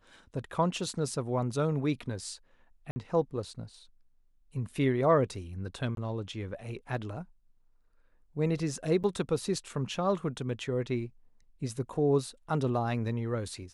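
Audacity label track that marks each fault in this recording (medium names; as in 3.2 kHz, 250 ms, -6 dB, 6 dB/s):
2.910000	2.960000	dropout 50 ms
5.950000	5.970000	dropout 22 ms
9.030000	9.040000	dropout 8.7 ms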